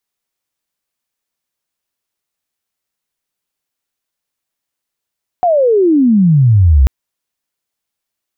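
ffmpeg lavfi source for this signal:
-f lavfi -i "aevalsrc='pow(10,(-8+4*t/1.44)/20)*sin(2*PI*740*1.44/log(61/740)*(exp(log(61/740)*t/1.44)-1))':d=1.44:s=44100"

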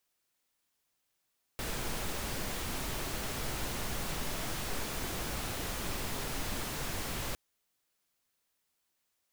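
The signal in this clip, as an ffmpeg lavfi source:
-f lavfi -i "anoisesrc=c=pink:a=0.0813:d=5.76:r=44100:seed=1"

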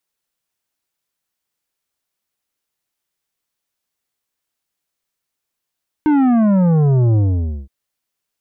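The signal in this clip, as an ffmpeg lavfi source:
-f lavfi -i "aevalsrc='0.266*clip((1.62-t)/0.52,0,1)*tanh(3.16*sin(2*PI*310*1.62/log(65/310)*(exp(log(65/310)*t/1.62)-1)))/tanh(3.16)':d=1.62:s=44100"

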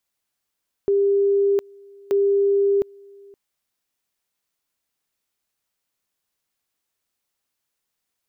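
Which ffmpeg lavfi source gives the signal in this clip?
-f lavfi -i "aevalsrc='pow(10,(-15-27.5*gte(mod(t,1.23),0.71))/20)*sin(2*PI*399*t)':d=2.46:s=44100"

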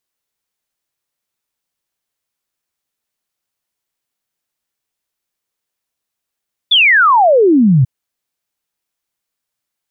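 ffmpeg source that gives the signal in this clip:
-f lavfi -i "aevalsrc='0.501*clip(min(t,1.14-t)/0.01,0,1)*sin(2*PI*3600*1.14/log(120/3600)*(exp(log(120/3600)*t/1.14)-1))':d=1.14:s=44100"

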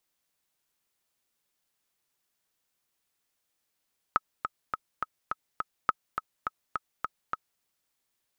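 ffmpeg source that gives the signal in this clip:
-f lavfi -i "aevalsrc='pow(10,(-9-7.5*gte(mod(t,6*60/208),60/208))/20)*sin(2*PI*1280*mod(t,60/208))*exp(-6.91*mod(t,60/208)/0.03)':d=3.46:s=44100"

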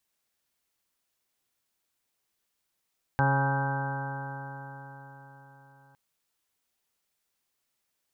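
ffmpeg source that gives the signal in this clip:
-f lavfi -i "aevalsrc='0.0668*pow(10,-3*t/4.53)*sin(2*PI*136.05*t)+0.0224*pow(10,-3*t/4.53)*sin(2*PI*272.41*t)+0.0112*pow(10,-3*t/4.53)*sin(2*PI*409.39*t)+0.0237*pow(10,-3*t/4.53)*sin(2*PI*547.3*t)+0.00891*pow(10,-3*t/4.53)*sin(2*PI*686.43*t)+0.0531*pow(10,-3*t/4.53)*sin(2*PI*827.09*t)+0.0237*pow(10,-3*t/4.53)*sin(2*PI*969.56*t)+0.0119*pow(10,-3*t/4.53)*sin(2*PI*1114.15*t)+0.0112*pow(10,-3*t/4.53)*sin(2*PI*1261.11*t)+0.0112*pow(10,-3*t/4.53)*sin(2*PI*1410.73*t)+0.0376*pow(10,-3*t/4.53)*sin(2*PI*1563.27*t)':d=2.76:s=44100"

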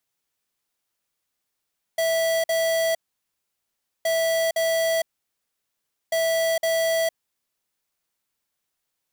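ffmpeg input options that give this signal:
-f lavfi -i "aevalsrc='0.0794*(2*lt(mod(656*t,1),0.5)-1)*clip(min(mod(mod(t,2.07),0.51),0.46-mod(mod(t,2.07),0.51))/0.005,0,1)*lt(mod(t,2.07),1.02)':d=6.21:s=44100"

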